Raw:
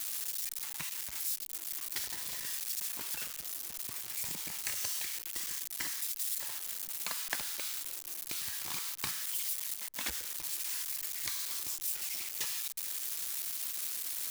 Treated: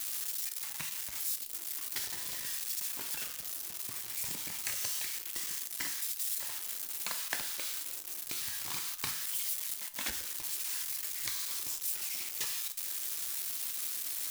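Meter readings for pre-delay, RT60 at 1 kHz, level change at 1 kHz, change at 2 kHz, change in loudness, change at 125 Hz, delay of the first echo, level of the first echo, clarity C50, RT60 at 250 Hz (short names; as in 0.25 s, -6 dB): 7 ms, 0.45 s, +0.5 dB, +0.5 dB, +0.5 dB, +1.0 dB, none, none, 14.5 dB, 0.45 s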